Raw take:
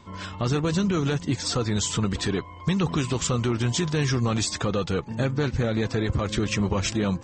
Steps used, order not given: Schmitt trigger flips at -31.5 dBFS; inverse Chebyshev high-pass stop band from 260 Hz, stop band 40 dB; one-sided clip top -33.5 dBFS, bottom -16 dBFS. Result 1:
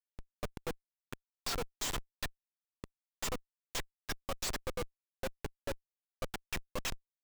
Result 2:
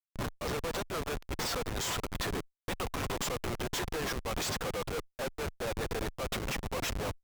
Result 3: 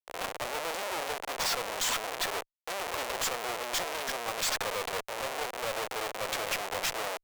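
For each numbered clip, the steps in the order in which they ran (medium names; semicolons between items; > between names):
inverse Chebyshev high-pass > one-sided clip > Schmitt trigger; inverse Chebyshev high-pass > Schmitt trigger > one-sided clip; Schmitt trigger > inverse Chebyshev high-pass > one-sided clip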